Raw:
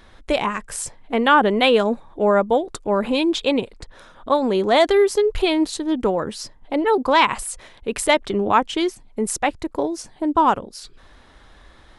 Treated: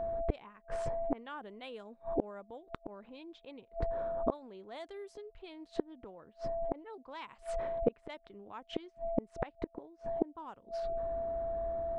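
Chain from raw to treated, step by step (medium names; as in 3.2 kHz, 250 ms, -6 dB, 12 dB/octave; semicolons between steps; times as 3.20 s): level-controlled noise filter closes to 640 Hz, open at -11.5 dBFS; whistle 670 Hz -37 dBFS; inverted gate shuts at -20 dBFS, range -34 dB; trim +3.5 dB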